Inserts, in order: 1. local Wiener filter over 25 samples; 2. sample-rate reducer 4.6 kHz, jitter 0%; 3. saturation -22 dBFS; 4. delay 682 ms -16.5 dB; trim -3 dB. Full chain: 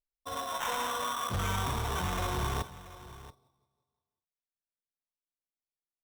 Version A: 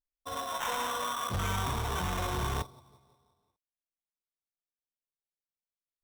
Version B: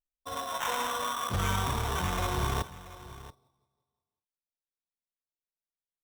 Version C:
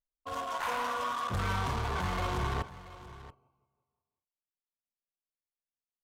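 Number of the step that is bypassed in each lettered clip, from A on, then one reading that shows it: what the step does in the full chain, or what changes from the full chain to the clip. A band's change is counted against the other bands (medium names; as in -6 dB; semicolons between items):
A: 4, momentary loudness spread change -11 LU; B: 3, distortion -16 dB; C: 2, distortion -1 dB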